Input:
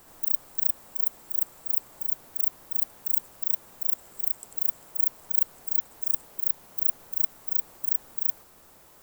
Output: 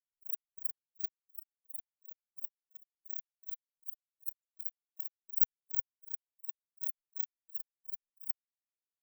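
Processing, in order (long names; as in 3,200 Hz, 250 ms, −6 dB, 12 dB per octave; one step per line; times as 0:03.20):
granular cloud 100 ms, spray 15 ms, pitch spread up and down by 3 semitones
every bin expanded away from the loudest bin 4 to 1
level −3.5 dB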